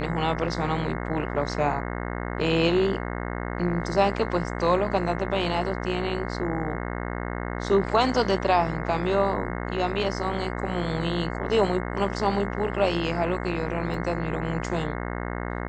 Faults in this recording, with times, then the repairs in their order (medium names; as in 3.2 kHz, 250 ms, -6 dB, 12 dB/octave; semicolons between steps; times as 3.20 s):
buzz 60 Hz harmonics 36 -31 dBFS
13.94 s: dropout 2.2 ms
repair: de-hum 60 Hz, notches 36; interpolate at 13.94 s, 2.2 ms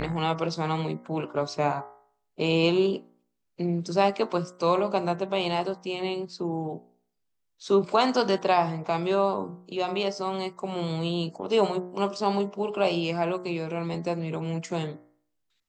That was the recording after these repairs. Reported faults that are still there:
nothing left